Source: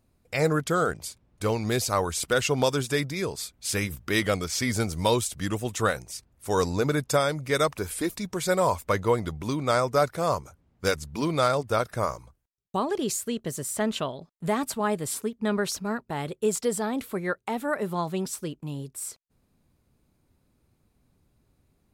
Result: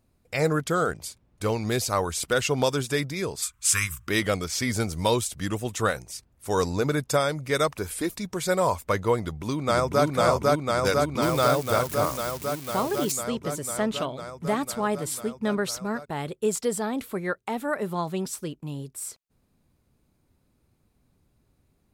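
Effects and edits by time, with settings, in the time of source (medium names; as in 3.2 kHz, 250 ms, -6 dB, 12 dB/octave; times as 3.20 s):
3.42–4.07 s: FFT filter 110 Hz 0 dB, 240 Hz -13 dB, 720 Hz -18 dB, 1.1 kHz +12 dB, 1.9 kHz +4 dB, 2.7 kHz +6 dB, 4.3 kHz -1 dB, 7.6 kHz +12 dB, 12 kHz +5 dB
9.18–10.05 s: echo throw 500 ms, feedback 80%, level 0 dB
11.22–13.12 s: zero-crossing glitches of -25 dBFS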